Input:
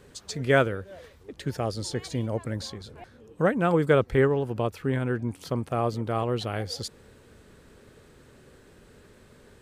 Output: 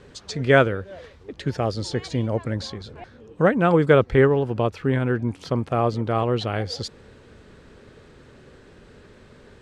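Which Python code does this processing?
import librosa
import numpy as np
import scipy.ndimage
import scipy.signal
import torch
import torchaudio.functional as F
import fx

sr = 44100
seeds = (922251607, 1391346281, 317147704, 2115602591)

y = scipy.signal.sosfilt(scipy.signal.butter(2, 5500.0, 'lowpass', fs=sr, output='sos'), x)
y = y * librosa.db_to_amplitude(5.0)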